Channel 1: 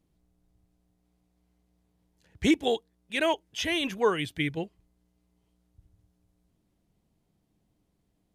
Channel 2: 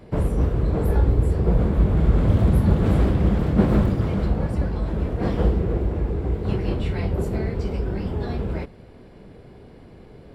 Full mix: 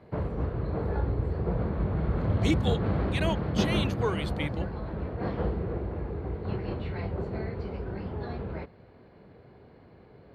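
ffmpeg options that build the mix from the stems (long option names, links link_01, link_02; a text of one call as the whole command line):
ffmpeg -i stem1.wav -i stem2.wav -filter_complex "[0:a]volume=-5.5dB[link_01];[1:a]lowpass=2000,equalizer=frequency=240:width=0.56:gain=-6,volume=-3dB[link_02];[link_01][link_02]amix=inputs=2:normalize=0,highpass=89,equalizer=frequency=4300:width_type=o:width=0.25:gain=11.5" out.wav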